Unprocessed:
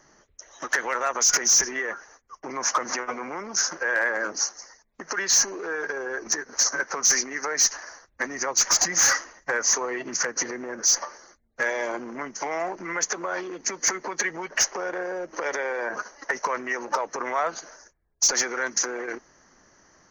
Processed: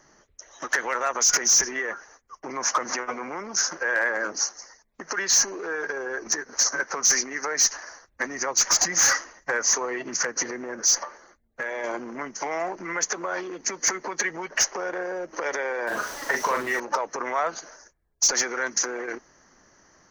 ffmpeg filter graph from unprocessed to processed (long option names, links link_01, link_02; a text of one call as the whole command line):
ffmpeg -i in.wav -filter_complex "[0:a]asettb=1/sr,asplit=3[link_01][link_02][link_03];[link_01]atrim=end=11.034[link_04];[link_02]atrim=start=11.03:end=11.84,asetpts=PTS-STARTPTS,afade=type=in:duration=0.004:curve=qsin,afade=type=out:start_time=0.806:duration=0.004:curve=qsin,equalizer=frequency=5400:width_type=o:width=0.74:gain=-9.5,acompressor=threshold=-28dB:ratio=2.5:attack=3.2:release=140:knee=1:detection=peak[link_05];[link_03]atrim=start=11.836[link_06];[link_04][link_05]acrossfade=duration=0.004:curve1=hsin:curve2=qsin[link_07];[link_07][link_06]acrossfade=duration=0.004:curve1=qsin:curve2=hsin,asettb=1/sr,asplit=3[link_08][link_09][link_10];[link_08]atrim=end=15.874[link_11];[link_09]atrim=start=15.87:end=16.8,asetpts=PTS-STARTPTS,afade=type=in:duration=0.004:curve=qsin,afade=type=out:start_time=0.926:duration=0.004:curve=qsin,aeval=exprs='val(0)+0.5*0.0188*sgn(val(0))':channel_layout=same,asplit=2[link_12][link_13];[link_13]adelay=42,volume=-4dB[link_14];[link_12][link_14]amix=inputs=2:normalize=0,atrim=end_sample=41013[link_15];[link_10]atrim=start=16.796[link_16];[link_11][link_15]acrossfade=duration=0.004:curve1=hsin:curve2=qsin[link_17];[link_17][link_16]acrossfade=duration=0.004:curve1=qsin:curve2=hsin" out.wav